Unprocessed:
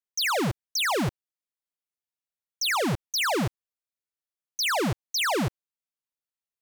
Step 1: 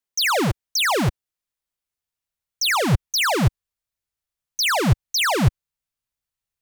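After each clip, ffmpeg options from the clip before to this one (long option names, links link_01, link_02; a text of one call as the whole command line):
ffmpeg -i in.wav -af "asubboost=boost=5.5:cutoff=120,volume=5.5dB" out.wav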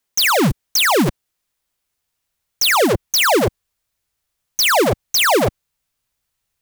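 ffmpeg -i in.wav -af "acontrast=76,aeval=exprs='0.168*(abs(mod(val(0)/0.168+3,4)-2)-1)':channel_layout=same,volume=5dB" out.wav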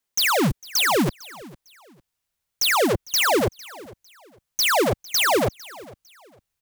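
ffmpeg -i in.wav -af "aecho=1:1:453|906:0.0891|0.0241,volume=-5dB" out.wav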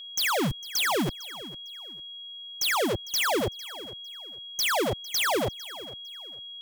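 ffmpeg -i in.wav -af "aeval=exprs='0.188*(cos(1*acos(clip(val(0)/0.188,-1,1)))-cos(1*PI/2))+0.0188*(cos(5*acos(clip(val(0)/0.188,-1,1)))-cos(5*PI/2))':channel_layout=same,aeval=exprs='val(0)+0.0224*sin(2*PI*3300*n/s)':channel_layout=same,volume=-6dB" out.wav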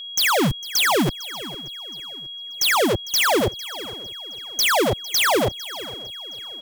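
ffmpeg -i in.wav -af "aecho=1:1:585|1170|1755:0.0708|0.0354|0.0177,volume=7dB" out.wav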